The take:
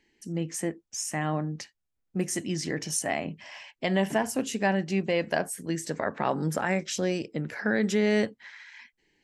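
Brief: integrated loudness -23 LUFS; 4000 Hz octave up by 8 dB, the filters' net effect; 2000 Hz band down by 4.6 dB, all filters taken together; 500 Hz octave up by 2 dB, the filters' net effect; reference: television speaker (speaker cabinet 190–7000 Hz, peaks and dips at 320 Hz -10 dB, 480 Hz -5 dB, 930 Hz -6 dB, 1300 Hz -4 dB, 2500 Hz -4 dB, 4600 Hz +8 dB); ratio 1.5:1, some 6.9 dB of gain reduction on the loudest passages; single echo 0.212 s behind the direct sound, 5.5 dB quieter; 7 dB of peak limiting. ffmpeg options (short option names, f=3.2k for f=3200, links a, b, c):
-af "equalizer=f=500:t=o:g=7.5,equalizer=f=2k:t=o:g=-6,equalizer=f=4k:t=o:g=9,acompressor=threshold=-36dB:ratio=1.5,alimiter=limit=-21.5dB:level=0:latency=1,highpass=f=190:w=0.5412,highpass=f=190:w=1.3066,equalizer=f=320:t=q:w=4:g=-10,equalizer=f=480:t=q:w=4:g=-5,equalizer=f=930:t=q:w=4:g=-6,equalizer=f=1.3k:t=q:w=4:g=-4,equalizer=f=2.5k:t=q:w=4:g=-4,equalizer=f=4.6k:t=q:w=4:g=8,lowpass=f=7k:w=0.5412,lowpass=f=7k:w=1.3066,aecho=1:1:212:0.531,volume=12dB"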